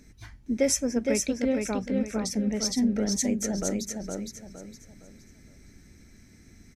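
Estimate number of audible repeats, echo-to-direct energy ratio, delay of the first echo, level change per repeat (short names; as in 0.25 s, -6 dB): 4, -3.5 dB, 0.463 s, -9.5 dB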